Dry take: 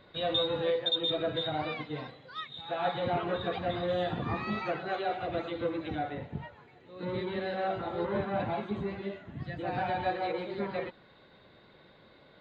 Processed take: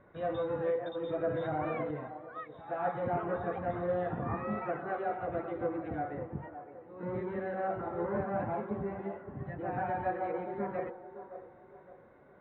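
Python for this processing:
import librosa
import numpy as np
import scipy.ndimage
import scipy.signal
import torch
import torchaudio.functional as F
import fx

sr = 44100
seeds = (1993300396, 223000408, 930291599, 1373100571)

y = scipy.signal.sosfilt(scipy.signal.butter(4, 1800.0, 'lowpass', fs=sr, output='sos'), x)
y = fx.echo_wet_bandpass(y, sr, ms=563, feedback_pct=36, hz=620.0, wet_db=-10.0)
y = fx.env_flatten(y, sr, amount_pct=70, at=(1.3, 1.91))
y = y * librosa.db_to_amplitude(-2.0)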